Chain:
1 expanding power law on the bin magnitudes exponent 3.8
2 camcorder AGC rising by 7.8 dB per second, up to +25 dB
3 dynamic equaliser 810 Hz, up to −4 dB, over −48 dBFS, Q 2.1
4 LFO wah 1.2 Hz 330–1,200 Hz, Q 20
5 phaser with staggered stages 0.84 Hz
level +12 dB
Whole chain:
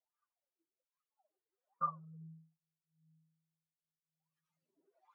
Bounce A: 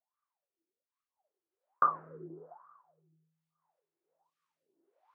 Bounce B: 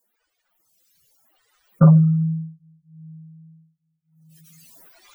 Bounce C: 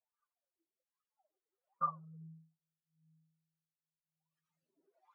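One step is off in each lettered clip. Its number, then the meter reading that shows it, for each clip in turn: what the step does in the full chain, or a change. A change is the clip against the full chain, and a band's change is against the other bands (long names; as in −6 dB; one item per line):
1, change in momentary loudness spread +3 LU
4, change in crest factor −6.0 dB
3, change in momentary loudness spread +1 LU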